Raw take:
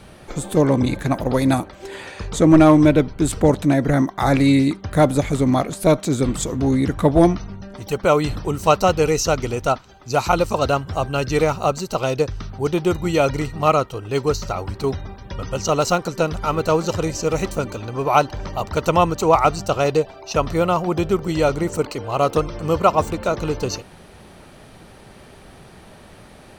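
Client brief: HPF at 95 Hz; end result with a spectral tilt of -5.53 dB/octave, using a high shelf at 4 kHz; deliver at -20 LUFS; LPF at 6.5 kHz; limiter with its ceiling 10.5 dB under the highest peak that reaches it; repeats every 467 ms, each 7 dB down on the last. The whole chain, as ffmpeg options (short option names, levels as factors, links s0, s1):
-af "highpass=95,lowpass=6500,highshelf=f=4000:g=-8,alimiter=limit=0.266:level=0:latency=1,aecho=1:1:467|934|1401|1868|2335:0.447|0.201|0.0905|0.0407|0.0183,volume=1.33"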